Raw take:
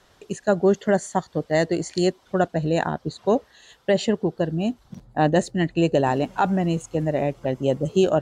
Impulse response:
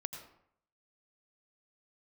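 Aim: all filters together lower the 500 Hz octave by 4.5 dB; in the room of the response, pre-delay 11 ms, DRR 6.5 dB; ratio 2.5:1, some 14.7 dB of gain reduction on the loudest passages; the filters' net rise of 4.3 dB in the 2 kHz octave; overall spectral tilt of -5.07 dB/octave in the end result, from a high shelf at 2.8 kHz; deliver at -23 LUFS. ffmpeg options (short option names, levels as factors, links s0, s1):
-filter_complex "[0:a]equalizer=f=500:t=o:g=-6.5,equalizer=f=2000:t=o:g=4,highshelf=f=2800:g=4.5,acompressor=threshold=0.01:ratio=2.5,asplit=2[s0][s1];[1:a]atrim=start_sample=2205,adelay=11[s2];[s1][s2]afir=irnorm=-1:irlink=0,volume=0.531[s3];[s0][s3]amix=inputs=2:normalize=0,volume=5.01"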